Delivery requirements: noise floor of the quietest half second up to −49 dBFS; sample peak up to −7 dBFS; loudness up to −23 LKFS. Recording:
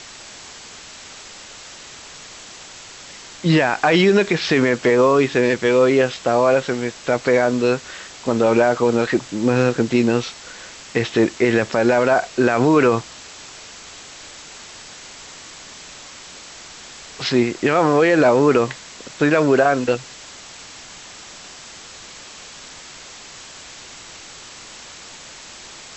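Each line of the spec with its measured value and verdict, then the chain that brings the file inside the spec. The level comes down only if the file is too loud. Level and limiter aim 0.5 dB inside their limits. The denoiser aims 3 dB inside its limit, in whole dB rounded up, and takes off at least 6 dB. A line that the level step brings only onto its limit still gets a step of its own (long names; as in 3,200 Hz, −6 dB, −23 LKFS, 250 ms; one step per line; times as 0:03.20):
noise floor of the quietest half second −39 dBFS: out of spec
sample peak −5.0 dBFS: out of spec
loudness −17.5 LKFS: out of spec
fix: broadband denoise 7 dB, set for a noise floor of −39 dBFS
level −6 dB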